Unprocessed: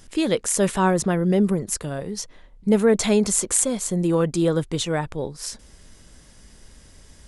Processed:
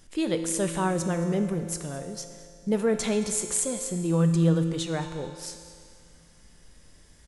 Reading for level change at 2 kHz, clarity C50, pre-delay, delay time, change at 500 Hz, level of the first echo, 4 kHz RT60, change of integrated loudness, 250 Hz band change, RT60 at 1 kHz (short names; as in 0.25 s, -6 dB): -6.5 dB, 7.0 dB, 6 ms, 0.22 s, -6.5 dB, -19.0 dB, 2.1 s, -5.0 dB, -5.0 dB, 2.3 s